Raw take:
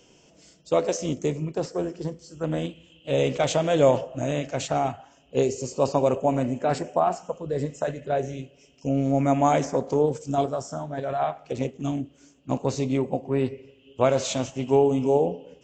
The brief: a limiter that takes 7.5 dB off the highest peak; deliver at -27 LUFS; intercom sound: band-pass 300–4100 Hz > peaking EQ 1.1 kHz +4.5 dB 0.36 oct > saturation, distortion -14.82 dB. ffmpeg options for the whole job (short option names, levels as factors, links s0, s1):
-af "alimiter=limit=0.211:level=0:latency=1,highpass=300,lowpass=4100,equalizer=f=1100:t=o:w=0.36:g=4.5,asoftclip=threshold=0.1,volume=1.5"